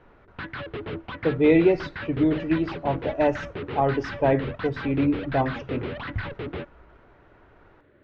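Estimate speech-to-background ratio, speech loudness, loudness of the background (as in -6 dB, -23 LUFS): 10.5 dB, -24.5 LUFS, -35.0 LUFS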